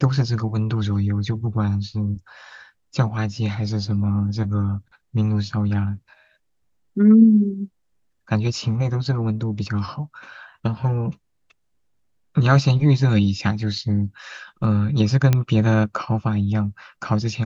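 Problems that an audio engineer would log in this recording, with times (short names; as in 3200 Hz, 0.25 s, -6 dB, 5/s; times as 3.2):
15.33 pop -6 dBFS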